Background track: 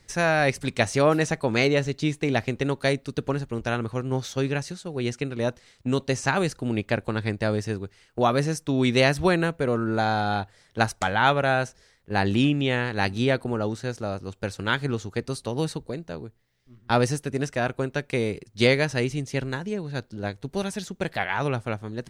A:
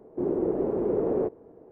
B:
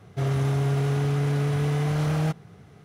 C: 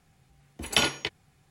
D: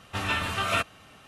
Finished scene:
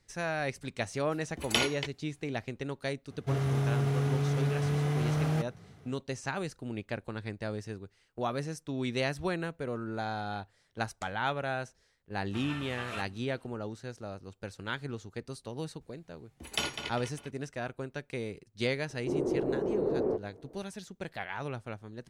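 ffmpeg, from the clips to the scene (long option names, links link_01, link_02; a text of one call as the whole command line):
ffmpeg -i bed.wav -i cue0.wav -i cue1.wav -i cue2.wav -i cue3.wav -filter_complex "[3:a]asplit=2[link_01][link_02];[0:a]volume=-11.5dB[link_03];[4:a]lowpass=12000[link_04];[link_02]asplit=2[link_05][link_06];[link_06]adelay=200,lowpass=frequency=4200:poles=1,volume=-7dB,asplit=2[link_07][link_08];[link_08]adelay=200,lowpass=frequency=4200:poles=1,volume=0.47,asplit=2[link_09][link_10];[link_10]adelay=200,lowpass=frequency=4200:poles=1,volume=0.47,asplit=2[link_11][link_12];[link_12]adelay=200,lowpass=frequency=4200:poles=1,volume=0.47,asplit=2[link_13][link_14];[link_14]adelay=200,lowpass=frequency=4200:poles=1,volume=0.47,asplit=2[link_15][link_16];[link_16]adelay=200,lowpass=frequency=4200:poles=1,volume=0.47[link_17];[link_05][link_07][link_09][link_11][link_13][link_15][link_17]amix=inputs=7:normalize=0[link_18];[link_01]atrim=end=1.5,asetpts=PTS-STARTPTS,volume=-5dB,afade=type=in:duration=0.004:curve=hsin,afade=type=out:start_time=1.496:duration=0.004:curve=hsin,adelay=780[link_19];[2:a]atrim=end=2.84,asetpts=PTS-STARTPTS,volume=-5dB,afade=type=in:duration=0.004:curve=hsin,afade=type=out:start_time=2.836:duration=0.004:curve=hsin,adelay=3100[link_20];[link_04]atrim=end=1.27,asetpts=PTS-STARTPTS,volume=-14.5dB,afade=type=in:duration=0.004:curve=hsin,afade=type=out:start_time=1.266:duration=0.004:curve=hsin,adelay=538020S[link_21];[link_18]atrim=end=1.5,asetpts=PTS-STARTPTS,volume=-9dB,afade=type=in:duration=0.004:curve=hsin,afade=type=out:start_time=1.496:duration=0.004:curve=hsin,adelay=15810[link_22];[1:a]atrim=end=1.71,asetpts=PTS-STARTPTS,volume=-4dB,afade=type=in:duration=0.004:curve=hsin,afade=type=out:start_time=1.706:duration=0.004:curve=hsin,adelay=18890[link_23];[link_03][link_19][link_20][link_21][link_22][link_23]amix=inputs=6:normalize=0" out.wav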